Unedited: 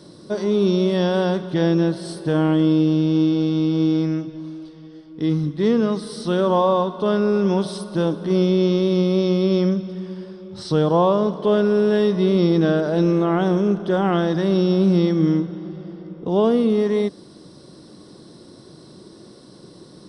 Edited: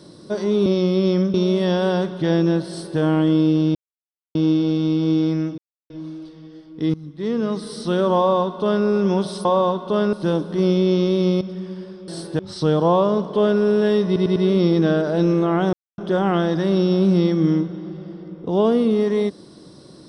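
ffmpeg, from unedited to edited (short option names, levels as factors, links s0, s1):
-filter_complex "[0:a]asplit=16[s0][s1][s2][s3][s4][s5][s6][s7][s8][s9][s10][s11][s12][s13][s14][s15];[s0]atrim=end=0.662[s16];[s1]atrim=start=9.128:end=9.812[s17];[s2]atrim=start=0.658:end=3.07,asetpts=PTS-STARTPTS,afade=t=out:st=2.408:d=0.004:c=hsin,apad=pad_dur=0.6[s18];[s3]atrim=start=3.07:end=4.3,asetpts=PTS-STARTPTS,afade=t=in:d=0.004:c=hsin,afade=t=out:st=1.226:d=0.004:c=hsin,apad=pad_dur=0.32[s19];[s4]atrim=start=4.3:end=5.34,asetpts=PTS-STARTPTS,afade=t=in:d=0.004:c=hsin,afade=t=out:st=1.036:d=0.004:c=hsin:silence=0.1[s20];[s5]atrim=start=5.34:end=7.852,asetpts=PTS-STARTPTS,afade=t=in:d=0.73:silence=0.1[s21];[s6]atrim=start=6.568:end=7.252[s22];[s7]atrim=start=7.848:end=9.132[s23];[s8]atrim=start=9.808:end=10.482[s24];[s9]atrim=start=1.998:end=2.312[s25];[s10]atrim=start=10.478:end=12.252[s26];[s11]atrim=start=12.148:end=12.252[s27];[s12]atrim=start=12.148:end=12.252[s28];[s13]atrim=start=12.148:end=13.52,asetpts=PTS-STARTPTS,afade=t=out:st=1.368:d=0.004:c=hsin[s29];[s14]atrim=start=13.52:end=13.77,asetpts=PTS-STARTPTS,volume=0[s30];[s15]atrim=start=13.77,asetpts=PTS-STARTPTS,afade=t=in:d=0.004:c=hsin[s31];[s16][s17]acrossfade=d=0.004:c1=hsin:c2=hsin[s32];[s18][s19][s20][s21]concat=n=4:v=0:a=1[s33];[s32][s33]acrossfade=d=0.004:c1=hsin:c2=hsin[s34];[s34][s22]acrossfade=d=0.004:c1=hsin:c2=hsin[s35];[s35][s23]acrossfade=d=0.004:c1=hsin:c2=hsin[s36];[s36][s24]acrossfade=d=0.004:c1=hsin:c2=hsin[s37];[s37][s25]acrossfade=d=0.004:c1=hsin:c2=hsin[s38];[s38][s26]acrossfade=d=0.004:c1=hsin:c2=hsin[s39];[s39][s27]acrossfade=d=0.004:c1=hsin:c2=hsin[s40];[s40][s28]acrossfade=d=0.004:c1=hsin:c2=hsin[s41];[s29][s30][s31]concat=n=3:v=0:a=1[s42];[s41][s42]acrossfade=d=0.004:c1=hsin:c2=hsin"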